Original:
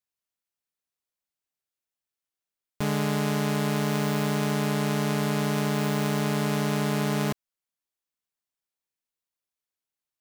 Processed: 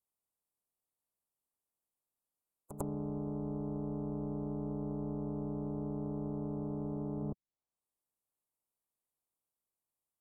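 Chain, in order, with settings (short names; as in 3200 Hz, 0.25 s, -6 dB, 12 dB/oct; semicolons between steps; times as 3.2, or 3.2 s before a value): spectral contrast lowered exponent 0.29; inverse Chebyshev band-stop 1800–5200 Hz, stop band 40 dB; spectral gate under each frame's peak -30 dB strong; treble ducked by the level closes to 300 Hz, closed at -32.5 dBFS; on a send: reverse echo 99 ms -11 dB; on the sum: gain +1 dB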